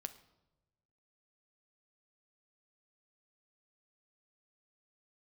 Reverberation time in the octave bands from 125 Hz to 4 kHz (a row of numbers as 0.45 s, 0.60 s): 1.6 s, 1.3 s, 1.2 s, 0.90 s, 0.70 s, 0.70 s